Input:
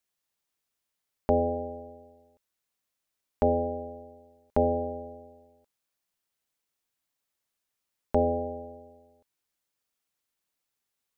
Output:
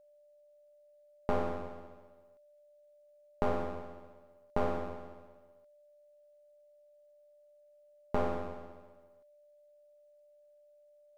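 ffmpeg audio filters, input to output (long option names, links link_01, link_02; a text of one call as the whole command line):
ffmpeg -i in.wav -af "aeval=exprs='max(val(0),0)':channel_layout=same,aeval=exprs='val(0)+0.00141*sin(2*PI*590*n/s)':channel_layout=same,volume=-3dB" out.wav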